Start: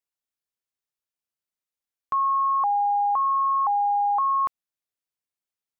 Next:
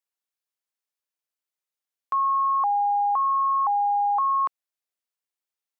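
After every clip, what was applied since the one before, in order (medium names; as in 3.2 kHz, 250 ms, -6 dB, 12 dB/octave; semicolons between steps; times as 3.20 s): high-pass 360 Hz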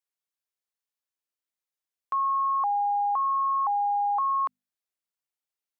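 hum notches 50/100/150/200/250 Hz; trim -3 dB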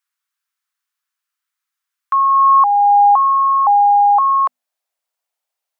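high-pass sweep 1.3 kHz -> 650 Hz, 2.28–3.36 s; trim +8.5 dB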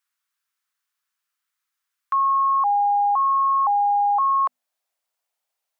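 peak limiter -16 dBFS, peak gain reduction 10 dB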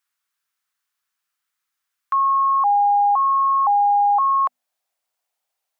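peaking EQ 760 Hz +3 dB 0.2 oct; trim +1.5 dB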